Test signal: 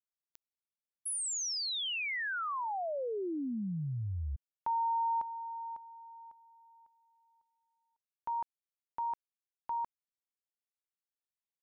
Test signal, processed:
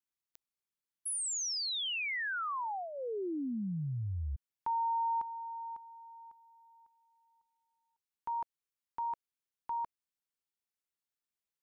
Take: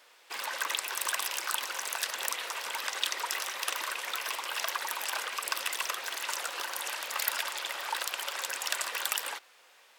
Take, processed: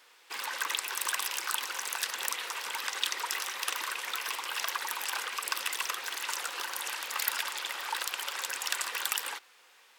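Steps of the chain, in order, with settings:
parametric band 620 Hz −8.5 dB 0.35 octaves

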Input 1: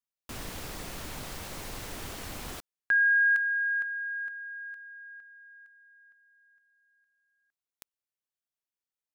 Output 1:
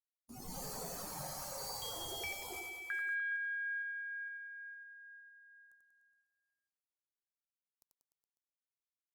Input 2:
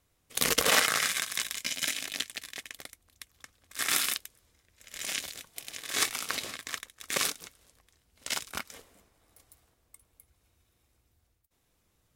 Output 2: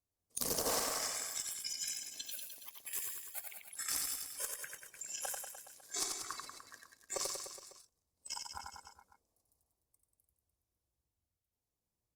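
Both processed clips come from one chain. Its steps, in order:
noise reduction from a noise print of the clip's start 23 dB
flat-topped bell 2,200 Hz −15 dB
delay with pitch and tempo change per echo 185 ms, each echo +6 semitones, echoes 3, each echo −6 dB
harmonic generator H 4 −18 dB, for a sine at −7 dBFS
downward compressor 2.5 to 1, threshold −43 dBFS
reverse bouncing-ball delay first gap 90 ms, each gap 1.1×, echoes 5
level +3.5 dB
Opus 48 kbit/s 48,000 Hz

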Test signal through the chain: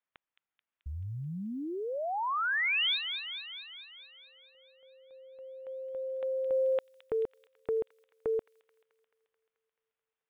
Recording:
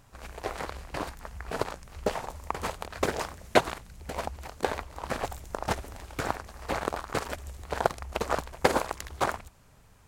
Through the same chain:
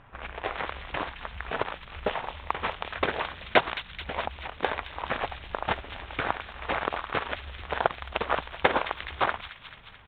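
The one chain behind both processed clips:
downsampling to 8,000 Hz
low-pass that shuts in the quiet parts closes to 2,000 Hz, open at −29.5 dBFS
in parallel at +2 dB: downward compressor 12 to 1, threshold −42 dBFS
on the sum: floating-point word with a short mantissa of 8 bits
tilt shelving filter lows −5 dB, about 790 Hz
delay with a high-pass on its return 217 ms, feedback 64%, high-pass 3,000 Hz, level −5 dB

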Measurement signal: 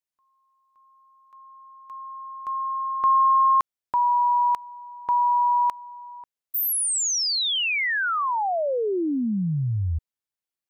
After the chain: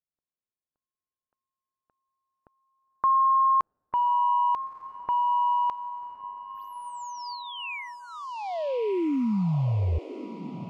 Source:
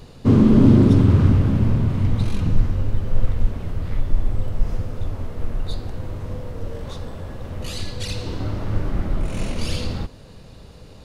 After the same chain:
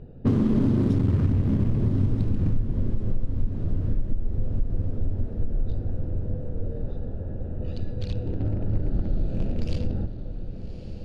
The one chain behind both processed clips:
adaptive Wiener filter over 41 samples
low-pass that shuts in the quiet parts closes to 2,900 Hz, open at −12 dBFS
feedback delay with all-pass diffusion 1,204 ms, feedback 51%, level −12 dB
downward compressor 6 to 1, threshold −18 dBFS

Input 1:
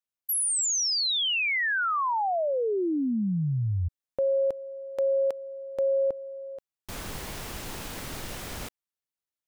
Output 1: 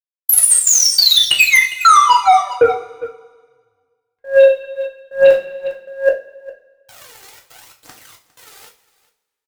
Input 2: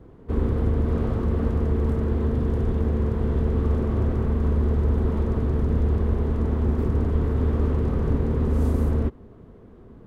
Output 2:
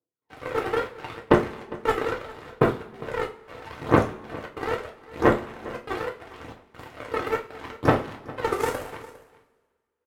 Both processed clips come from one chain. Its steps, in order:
Bessel high-pass filter 580 Hz, order 2
phase shifter 0.76 Hz, delay 2.6 ms, feedback 77%
gate pattern "..xxxxxx.xx.xxx" 138 BPM −12 dB
harmonic generator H 3 −45 dB, 7 −17 dB, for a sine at −11 dBFS
single-tap delay 405 ms −19.5 dB
coupled-rooms reverb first 0.29 s, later 1.7 s, from −22 dB, DRR −0.5 dB
boost into a limiter +15 dB
level −1 dB

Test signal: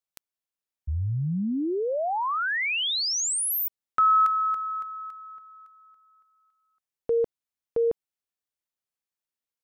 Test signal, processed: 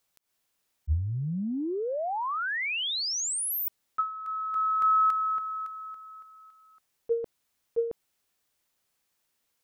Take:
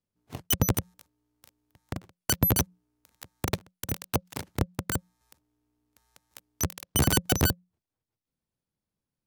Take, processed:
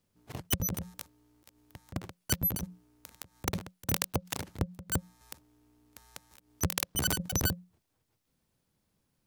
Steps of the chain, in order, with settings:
volume swells 147 ms
compressor whose output falls as the input rises −36 dBFS, ratio −1
level +6.5 dB

